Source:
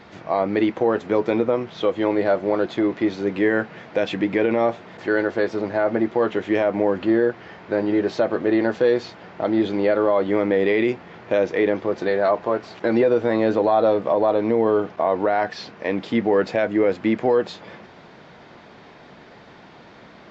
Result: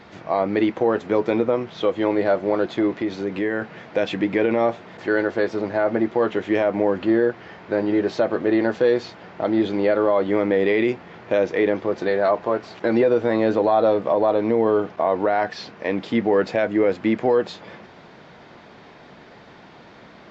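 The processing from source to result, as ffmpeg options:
-filter_complex "[0:a]asettb=1/sr,asplit=3[a][b][c];[a]atrim=end=2.924[d];[b]atrim=start=2.92:end=3.62,asetpts=PTS-STARTPTS,afade=t=in:d=0.004:c=qsin,afade=t=out:st=0.696:d=0.004:c=qsin,acompressor=threshold=-22dB:ratio=2:attack=3.2:release=140:knee=1:detection=peak[e];[c]atrim=start=3.616[f];[d][e]acrossfade=d=0.004:c1=hsin:c2=qsin[g];[g][f]acrossfade=d=0.004:c1=qsin:c2=hsin"

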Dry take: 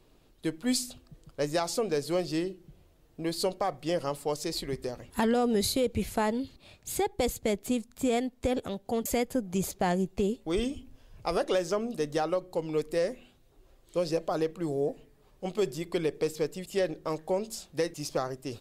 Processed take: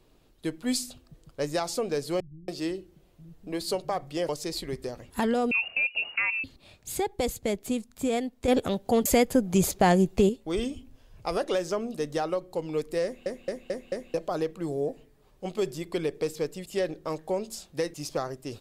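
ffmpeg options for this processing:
-filter_complex "[0:a]asettb=1/sr,asplit=3[a][b][c];[a]atrim=end=2.204[d];[b]atrim=start=2.2:end=4.29,asetpts=PTS-STARTPTS,afade=t=in:d=0.004:c=qsin,afade=t=out:st=2.086:d=0.004:c=qsin,acrossover=split=150[e][f];[f]adelay=280[g];[e][g]amix=inputs=2:normalize=0,atrim=end_sample=92169[h];[c]atrim=start=4.286[i];[d][h]acrossfade=d=0.004:c1=hsin:c2=qsin[j];[j][i]acrossfade=d=0.004:c1=qsin:c2=hsin,asettb=1/sr,asplit=3[k][l][m];[k]atrim=end=5.514[n];[l]atrim=start=5.51:end=6.44,asetpts=PTS-STARTPTS,afade=t=in:d=0.004:c=qsin,afade=t=out:st=0.926:d=0.004:c=qsin,lowpass=f=2.5k:t=q:w=0.5098,lowpass=f=2.5k:t=q:w=0.6013,lowpass=f=2.5k:t=q:w=0.9,lowpass=f=2.5k:t=q:w=2.563,afreqshift=-2900[o];[m]atrim=start=6.436[p];[n][o]acrossfade=d=0.004:c1=hsin:c2=qsin[q];[q][p]acrossfade=d=0.004:c1=qsin:c2=hsin,asplit=8[r][s][t][u][v][w][x][y];[r]atrim=end=8.482[z];[s]atrim=start=8.478:end=10.292,asetpts=PTS-STARTPTS,volume=7dB[aa];[t]atrim=start=10.288:end=13.262[ab];[u]atrim=start=13.038:end=13.262[ac];[v]atrim=start=13.038:end=13.262[ad];[w]atrim=start=13.038:end=13.262[ae];[x]atrim=start=13.038:end=13.262[af];[y]atrim=start=14.138[ag];[z][aa]acrossfade=d=0.004:c1=hsin:c2=hsin[ah];[ah][ab]acrossfade=d=0.004:c1=hsin:c2=hsin[ai];[ai][ac]acrossfade=d=0.004:c1=hsin:c2=hsin[aj];[aj][ad]acrossfade=d=0.004:c1=hsin:c2=hsin[ak];[ak][ae]acrossfade=d=0.004:c1=hsin:c2=hsin[al];[al][af]acrossfade=d=0.004:c1=hsin:c2=hsin[am];[am][ag]acrossfade=d=0.004:c1=hsin:c2=hsin"

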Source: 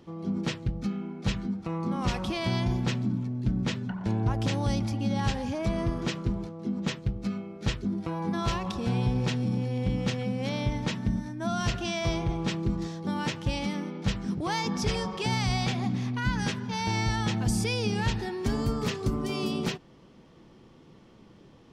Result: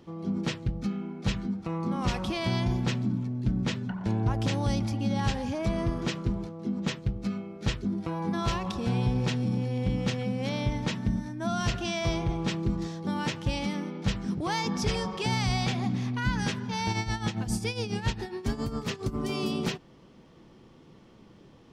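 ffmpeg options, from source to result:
-filter_complex "[0:a]asplit=3[a][b][c];[a]afade=t=out:st=16.92:d=0.02[d];[b]tremolo=f=7.3:d=0.74,afade=t=in:st=16.92:d=0.02,afade=t=out:st=19.14:d=0.02[e];[c]afade=t=in:st=19.14:d=0.02[f];[d][e][f]amix=inputs=3:normalize=0"

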